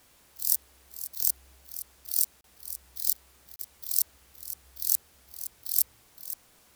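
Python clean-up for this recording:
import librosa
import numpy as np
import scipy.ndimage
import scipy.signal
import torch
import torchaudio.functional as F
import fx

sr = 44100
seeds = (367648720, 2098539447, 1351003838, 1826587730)

y = fx.fix_interpolate(x, sr, at_s=(2.41, 3.56), length_ms=32.0)
y = fx.fix_echo_inverse(y, sr, delay_ms=516, level_db=-12.5)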